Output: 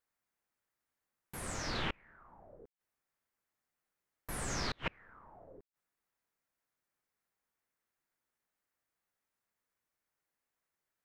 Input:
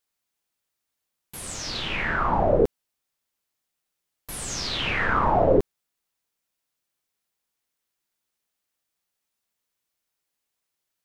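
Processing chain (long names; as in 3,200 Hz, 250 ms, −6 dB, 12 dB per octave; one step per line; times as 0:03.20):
high shelf with overshoot 2,400 Hz −7 dB, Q 1.5
gate with flip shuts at −20 dBFS, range −35 dB
level −2.5 dB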